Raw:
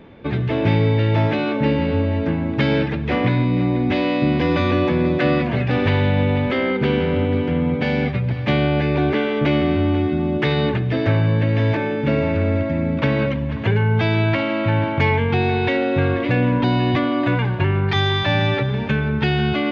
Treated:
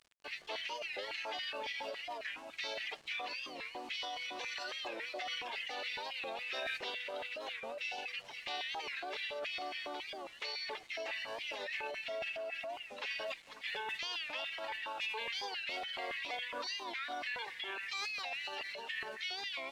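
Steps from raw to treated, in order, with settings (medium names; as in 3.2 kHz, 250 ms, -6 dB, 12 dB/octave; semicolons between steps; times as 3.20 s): level rider gain up to 10 dB; differentiator; LFO high-pass square 3.6 Hz 490–1700 Hz; de-hum 165 Hz, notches 11; peak limiter -27 dBFS, peak gain reduction 14.5 dB; reverb removal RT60 2 s; bit crusher 9-bit; formant shift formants +3 st; distance through air 53 m; warped record 45 rpm, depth 160 cents; trim -2 dB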